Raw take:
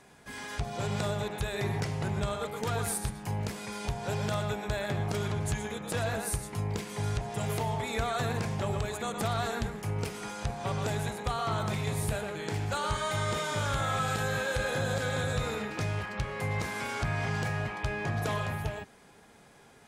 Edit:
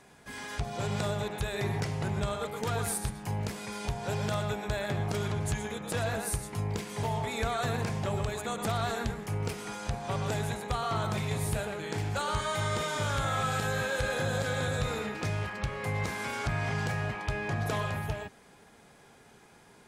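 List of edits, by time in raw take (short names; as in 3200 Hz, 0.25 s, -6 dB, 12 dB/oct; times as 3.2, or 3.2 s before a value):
7.03–7.59 cut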